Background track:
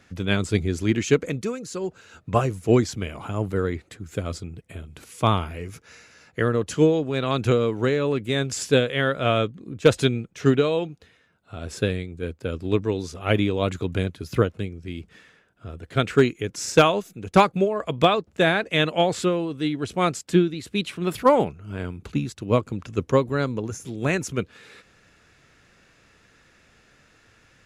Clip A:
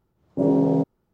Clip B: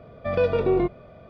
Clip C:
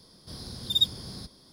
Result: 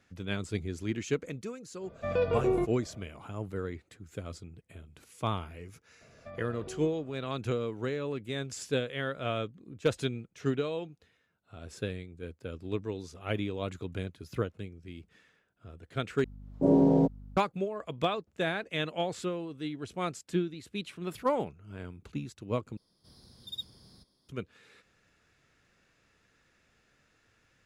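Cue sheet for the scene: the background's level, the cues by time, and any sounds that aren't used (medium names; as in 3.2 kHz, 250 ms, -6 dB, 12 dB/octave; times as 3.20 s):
background track -11.5 dB
1.78 s: add B -6.5 dB, fades 0.10 s
6.01 s: add B -13 dB + compression, threshold -28 dBFS
16.24 s: replace with A -3 dB + hum 50 Hz, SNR 21 dB
22.77 s: replace with C -16.5 dB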